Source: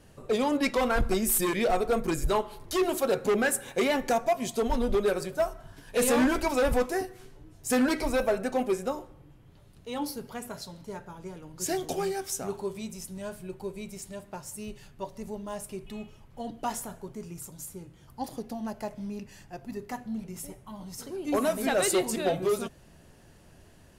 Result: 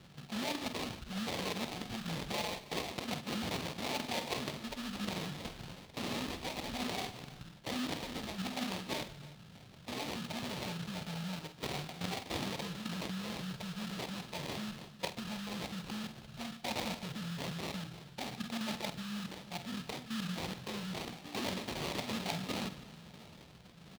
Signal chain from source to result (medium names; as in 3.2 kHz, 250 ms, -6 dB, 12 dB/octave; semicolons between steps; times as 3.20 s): drifting ripple filter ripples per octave 0.58, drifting +1.1 Hz, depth 9 dB; in parallel at -2.5 dB: peak limiter -21 dBFS, peak gain reduction 7.5 dB; on the sum: elliptic band-stop 260–810 Hz, stop band 50 dB; comb 5.6 ms, depth 56%; level held to a coarse grid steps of 14 dB; transient shaper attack -1 dB, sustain +6 dB; sample-rate reducer 1.5 kHz, jitter 20%; reverse; compression 10:1, threshold -38 dBFS, peak gain reduction 22 dB; reverse; high-pass 80 Hz 12 dB/octave; peaking EQ 3.7 kHz +10.5 dB 1.4 oct; multi-tap echo 48/149/320 ms -11.5/-19/-19 dB; trim +2 dB